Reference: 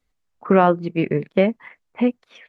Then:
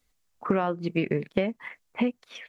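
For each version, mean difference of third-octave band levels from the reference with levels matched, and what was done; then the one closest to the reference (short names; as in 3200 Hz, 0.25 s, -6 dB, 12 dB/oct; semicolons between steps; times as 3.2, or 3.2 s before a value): 4.5 dB: high shelf 3700 Hz +10 dB; compressor 12:1, threshold -21 dBFS, peak gain reduction 13 dB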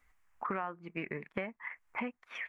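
6.0 dB: graphic EQ 125/250/500/1000/2000/4000 Hz -8/-5/-7/+6/+9/-11 dB; compressor 6:1, threshold -41 dBFS, peak gain reduction 29 dB; gain +4.5 dB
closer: first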